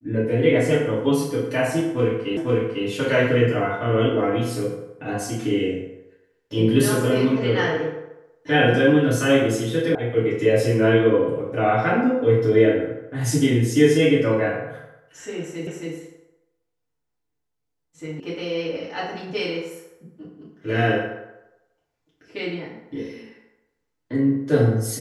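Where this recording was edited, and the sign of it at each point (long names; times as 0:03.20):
0:02.37: the same again, the last 0.5 s
0:09.95: cut off before it has died away
0:15.67: the same again, the last 0.27 s
0:18.20: cut off before it has died away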